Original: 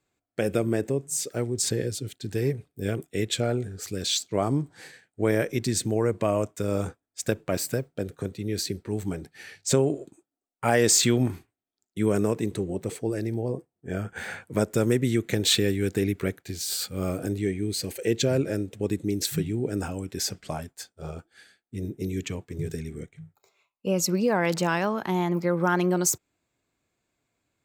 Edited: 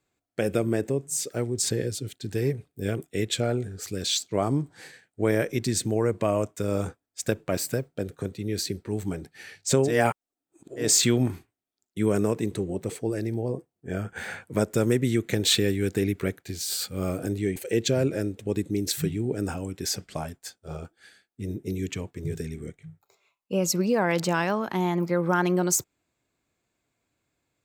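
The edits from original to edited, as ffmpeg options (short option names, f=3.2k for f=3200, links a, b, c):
-filter_complex "[0:a]asplit=4[a][b][c][d];[a]atrim=end=9.99[e];[b]atrim=start=9.83:end=10.92,asetpts=PTS-STARTPTS,areverse[f];[c]atrim=start=10.76:end=17.562[g];[d]atrim=start=17.898[h];[e][f]acrossfade=d=0.16:c1=tri:c2=tri[i];[i][g]acrossfade=d=0.16:c1=tri:c2=tri[j];[j][h]acrossfade=d=0.004:c1=hsin:c2=hsin"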